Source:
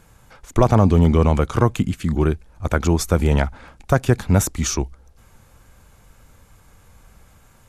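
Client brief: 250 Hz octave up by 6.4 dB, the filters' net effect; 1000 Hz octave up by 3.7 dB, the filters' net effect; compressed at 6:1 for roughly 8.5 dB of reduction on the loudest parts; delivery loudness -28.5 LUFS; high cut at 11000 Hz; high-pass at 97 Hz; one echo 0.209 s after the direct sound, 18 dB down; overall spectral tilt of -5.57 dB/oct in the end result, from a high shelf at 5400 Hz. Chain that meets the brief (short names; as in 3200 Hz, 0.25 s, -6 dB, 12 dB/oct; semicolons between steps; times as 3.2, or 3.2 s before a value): HPF 97 Hz; LPF 11000 Hz; bell 250 Hz +8.5 dB; bell 1000 Hz +4 dB; high shelf 5400 Hz +5.5 dB; compressor 6:1, threshold -16 dBFS; echo 0.209 s -18 dB; gain -5.5 dB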